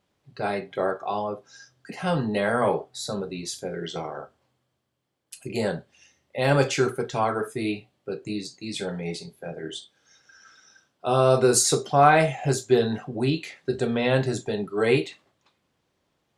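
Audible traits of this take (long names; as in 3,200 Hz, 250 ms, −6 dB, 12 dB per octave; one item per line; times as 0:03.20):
background noise floor −74 dBFS
spectral slope −4.5 dB per octave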